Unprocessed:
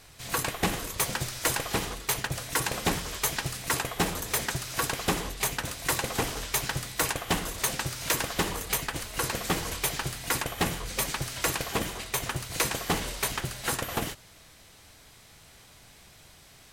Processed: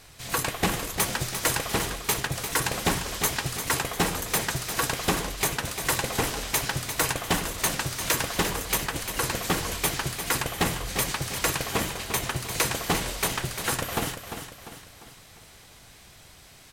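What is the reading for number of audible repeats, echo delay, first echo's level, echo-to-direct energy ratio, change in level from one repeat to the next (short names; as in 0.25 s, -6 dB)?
4, 0.348 s, -9.0 dB, -8.0 dB, -6.5 dB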